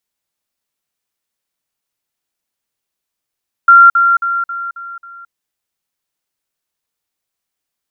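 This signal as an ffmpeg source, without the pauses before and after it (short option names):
-f lavfi -i "aevalsrc='pow(10,(-1.5-6*floor(t/0.27))/20)*sin(2*PI*1380*t)*clip(min(mod(t,0.27),0.22-mod(t,0.27))/0.005,0,1)':d=1.62:s=44100"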